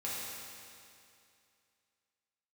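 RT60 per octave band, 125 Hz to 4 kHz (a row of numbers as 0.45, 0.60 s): 2.5, 2.5, 2.5, 2.5, 2.5, 2.4 s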